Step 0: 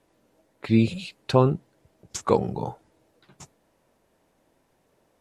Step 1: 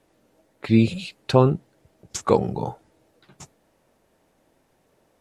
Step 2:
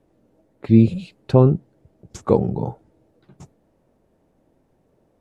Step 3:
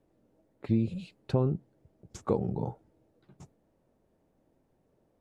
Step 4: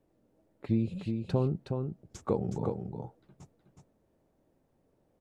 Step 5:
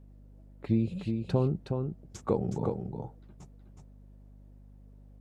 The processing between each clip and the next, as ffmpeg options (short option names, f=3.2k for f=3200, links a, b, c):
-af "bandreject=f=1k:w=24,volume=2.5dB"
-af "tiltshelf=f=830:g=8,volume=-2.5dB"
-af "acompressor=threshold=-15dB:ratio=4,volume=-8dB"
-af "aecho=1:1:368:0.531,volume=-1.5dB"
-af "aeval=exprs='val(0)+0.00224*(sin(2*PI*50*n/s)+sin(2*PI*2*50*n/s)/2+sin(2*PI*3*50*n/s)/3+sin(2*PI*4*50*n/s)/4+sin(2*PI*5*50*n/s)/5)':c=same,volume=1.5dB"